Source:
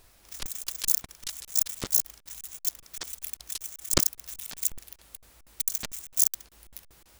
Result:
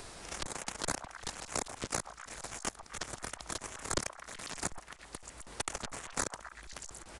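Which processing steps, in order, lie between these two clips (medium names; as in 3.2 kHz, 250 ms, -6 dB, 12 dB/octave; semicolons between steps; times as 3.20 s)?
in parallel at -3.5 dB: decimation with a swept rate 12×, swing 60% 2.6 Hz; on the sum: resampled via 22.05 kHz; repeats whose band climbs or falls 125 ms, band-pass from 920 Hz, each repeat 0.7 oct, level -8.5 dB; three bands compressed up and down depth 70%; trim -8 dB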